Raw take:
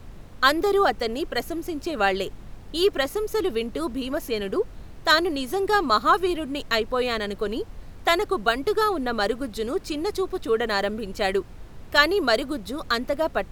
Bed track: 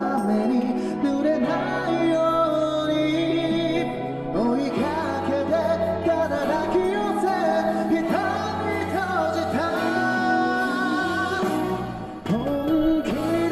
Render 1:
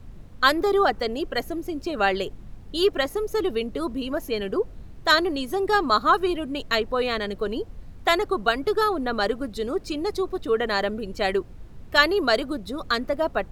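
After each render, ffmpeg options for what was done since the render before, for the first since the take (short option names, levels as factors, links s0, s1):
-af "afftdn=nr=7:nf=-42"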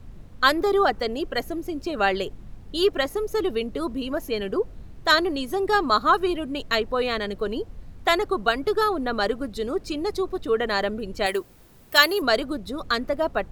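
-filter_complex "[0:a]asettb=1/sr,asplit=3[s0][s1][s2];[s0]atrim=end=11.264[s3];[s1]atrim=start=11.26:end=12.22,asetpts=PTS-STARTPTS,afade=t=in:d=0.004:c=qsin,afade=t=out:st=0.956:d=0.004:c=qsin,aemphasis=mode=production:type=bsi[s4];[s2]atrim=start=12.216[s5];[s3][s4]acrossfade=d=0.004:c1=hsin:c2=qsin[s6];[s6][s5]acrossfade=d=0.004:c1=qsin:c2=hsin"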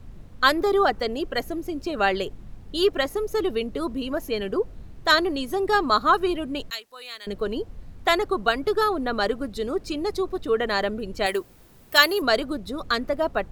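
-filter_complex "[0:a]asettb=1/sr,asplit=3[s0][s1][s2];[s0]atrim=end=6.704[s3];[s1]atrim=start=6.7:end=7.27,asetpts=PTS-STARTPTS,afade=t=in:d=0.004:c=qsin,afade=t=out:st=0.566:d=0.004:c=qsin,aderivative[s4];[s2]atrim=start=7.266[s5];[s3][s4]acrossfade=d=0.004:c1=hsin:c2=qsin[s6];[s6][s5]acrossfade=d=0.004:c1=qsin:c2=hsin"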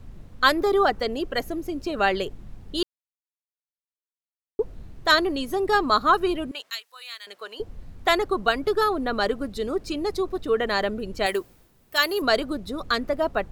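-filter_complex "[0:a]asettb=1/sr,asplit=3[s0][s1][s2];[s0]atrim=end=6.514[s3];[s1]atrim=start=6.51:end=7.6,asetpts=PTS-STARTPTS,afade=t=in:d=0.004:c=qsin,afade=t=out:st=1.086:d=0.004:c=qsin,highpass=1000[s4];[s2]atrim=start=7.596[s5];[s3][s4]acrossfade=d=0.004:c1=hsin:c2=qsin[s6];[s6][s5]acrossfade=d=0.004:c1=qsin:c2=hsin,asplit=5[s7][s8][s9][s10][s11];[s7]atrim=end=2.83,asetpts=PTS-STARTPTS,afade=t=out:st=2.826:d=0.004:c=hsin[s12];[s8]atrim=start=2.83:end=4.59,asetpts=PTS-STARTPTS,volume=0[s13];[s9]atrim=start=4.59:end=11.72,asetpts=PTS-STARTPTS,afade=t=in:d=0.004:c=hsin,afade=t=out:st=6.8:d=0.33:silence=0.375837[s14];[s10]atrim=start=11.72:end=11.91,asetpts=PTS-STARTPTS,volume=0.376[s15];[s11]atrim=start=11.91,asetpts=PTS-STARTPTS,afade=t=in:d=0.33:silence=0.375837[s16];[s12][s13][s14][s15][s16]concat=n=5:v=0:a=1"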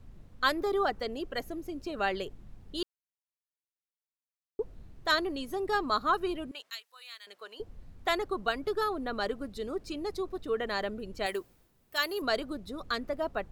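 -af "volume=0.376"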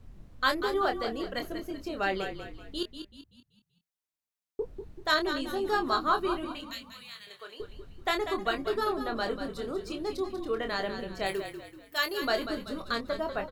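-filter_complex "[0:a]asplit=2[s0][s1];[s1]adelay=26,volume=0.473[s2];[s0][s2]amix=inputs=2:normalize=0,asplit=6[s3][s4][s5][s6][s7][s8];[s4]adelay=191,afreqshift=-35,volume=0.355[s9];[s5]adelay=382,afreqshift=-70,volume=0.146[s10];[s6]adelay=573,afreqshift=-105,volume=0.0596[s11];[s7]adelay=764,afreqshift=-140,volume=0.0245[s12];[s8]adelay=955,afreqshift=-175,volume=0.01[s13];[s3][s9][s10][s11][s12][s13]amix=inputs=6:normalize=0"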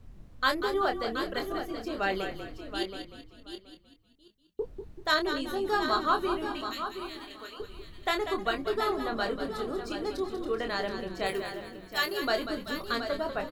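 -af "aecho=1:1:725|1450:0.355|0.0532"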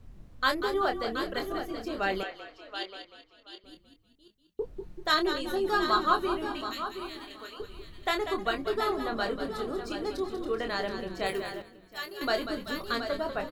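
-filter_complex "[0:a]asettb=1/sr,asplit=3[s0][s1][s2];[s0]atrim=end=2.234[s3];[s1]atrim=start=2.23:end=3.64,asetpts=PTS-STARTPTS,afade=t=in:d=0.004:c=qsin,afade=t=out:st=1.406:d=0.004:c=qsin,acrossover=split=450 6000:gain=0.0891 1 0.141[s4][s5][s6];[s4][s5][s6]amix=inputs=3:normalize=0[s7];[s2]atrim=start=3.636[s8];[s3][s7]acrossfade=d=0.004:c1=hsin:c2=qsin[s9];[s9][s8]acrossfade=d=0.004:c1=qsin:c2=hsin,asettb=1/sr,asplit=3[s10][s11][s12];[s10]atrim=end=4.764[s13];[s11]atrim=start=4.76:end=6.17,asetpts=PTS-STARTPTS,afade=t=in:d=0.004:c=qsin,afade=t=out:st=1.406:d=0.004:c=qsin,aecho=1:1:5.6:0.56,atrim=end_sample=62181[s14];[s12]atrim=start=6.166[s15];[s13][s14]acrossfade=d=0.004:c1=hsin:c2=qsin[s16];[s16][s15]acrossfade=d=0.004:c1=qsin:c2=hsin,asplit=3[s17][s18][s19];[s17]atrim=end=11.622[s20];[s18]atrim=start=11.618:end=12.212,asetpts=PTS-STARTPTS,volume=0.355[s21];[s19]atrim=start=12.208[s22];[s20][s21]acrossfade=d=0.004:c1=hsin:c2=hsin[s23];[s23][s22]acrossfade=d=0.004:c1=hsin:c2=hsin"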